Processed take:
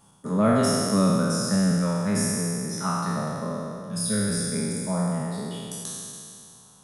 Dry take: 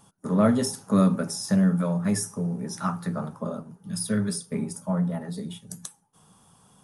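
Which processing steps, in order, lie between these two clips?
spectral sustain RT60 2.49 s; trim -2.5 dB

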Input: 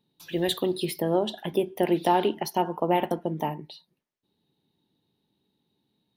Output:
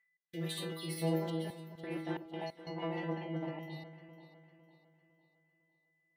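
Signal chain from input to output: chunks repeated in reverse 135 ms, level -0.5 dB; overload inside the chain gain 16.5 dB; whistle 2 kHz -34 dBFS; inharmonic resonator 160 Hz, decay 0.6 s, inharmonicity 0.002; gate with hold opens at -46 dBFS; high-pass 94 Hz; trance gate "x.xxxxxxx..xx." 90 bpm -24 dB; 1.30–3.63 s: low-pass 3 kHz 12 dB/octave; echo whose repeats swap between lows and highs 252 ms, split 1.2 kHz, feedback 63%, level -10 dB; trim +2.5 dB

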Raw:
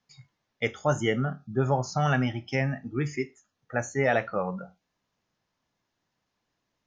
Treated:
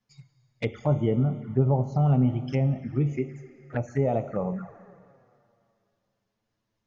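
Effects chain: low-pass that closes with the level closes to 1.3 kHz, closed at -22 dBFS; bass shelf 270 Hz +9 dB; Schroeder reverb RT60 2.5 s, combs from 28 ms, DRR 12 dB; touch-sensitive flanger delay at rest 9.2 ms, full sweep at -22.5 dBFS; trim -1.5 dB

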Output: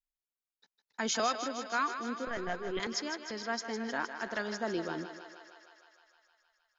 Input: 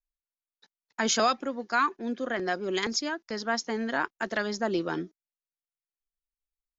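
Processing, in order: 2.27–2.80 s: LPC vocoder at 8 kHz pitch kept; on a send: thinning echo 155 ms, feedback 76%, high-pass 370 Hz, level -9 dB; on the sum: trim -6.5 dB

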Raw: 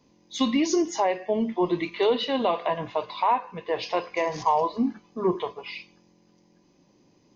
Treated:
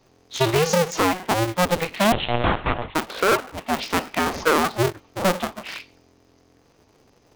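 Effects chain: cycle switcher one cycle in 2, inverted; 2.12–2.95 s: monotone LPC vocoder at 8 kHz 120 Hz; trim +3.5 dB

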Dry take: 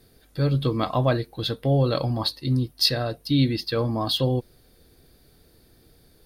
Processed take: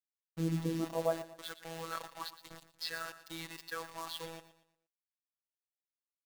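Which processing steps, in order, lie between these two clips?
dynamic bell 660 Hz, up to -4 dB, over -39 dBFS, Q 4.8; band-pass sweep 250 Hz -> 1.5 kHz, 0.74–1.40 s; bit crusher 7-bit; robot voice 164 Hz; on a send: feedback delay 117 ms, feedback 37%, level -14 dB; on the sum: trim -1.5 dB

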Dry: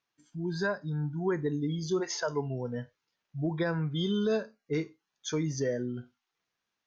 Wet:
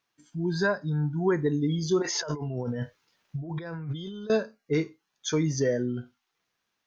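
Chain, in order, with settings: 2.02–4.30 s: compressor with a negative ratio -39 dBFS, ratio -1; trim +5 dB

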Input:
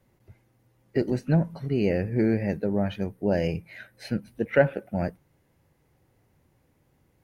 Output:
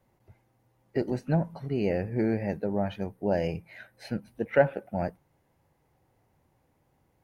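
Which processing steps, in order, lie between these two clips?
peaking EQ 820 Hz +7 dB 1 oct; trim -4.5 dB

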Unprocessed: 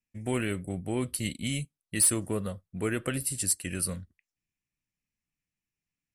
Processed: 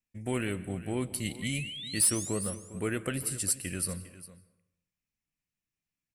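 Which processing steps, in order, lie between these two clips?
painted sound rise, 1.42–2.55 s, 1.9–11 kHz -39 dBFS; on a send: delay 404 ms -16 dB; on the sum: plate-style reverb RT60 0.79 s, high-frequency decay 0.65×, pre-delay 115 ms, DRR 16.5 dB; trim -2 dB

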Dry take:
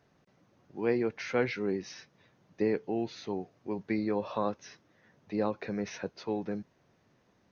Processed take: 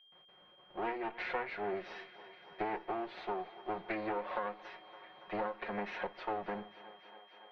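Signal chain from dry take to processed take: comb filter that takes the minimum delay 5.5 ms; gate with hold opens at -59 dBFS; whistle 3.2 kHz -62 dBFS; three-band isolator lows -17 dB, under 430 Hz, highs -21 dB, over 3.6 kHz; compression 6:1, threshold -42 dBFS, peak gain reduction 14 dB; distance through air 220 m; thinning echo 282 ms, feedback 85%, high-pass 250 Hz, level -18 dB; on a send at -21 dB: reverberation RT60 0.60 s, pre-delay 3 ms; on the sum: trim +8.5 dB

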